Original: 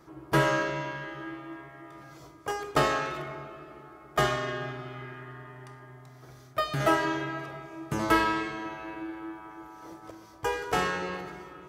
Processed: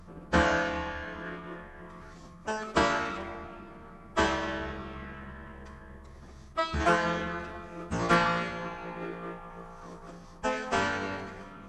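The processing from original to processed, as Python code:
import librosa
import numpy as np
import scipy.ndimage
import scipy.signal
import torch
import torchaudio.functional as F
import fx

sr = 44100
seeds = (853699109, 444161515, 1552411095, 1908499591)

y = fx.add_hum(x, sr, base_hz=50, snr_db=19)
y = fx.pitch_keep_formants(y, sr, semitones=-11.0)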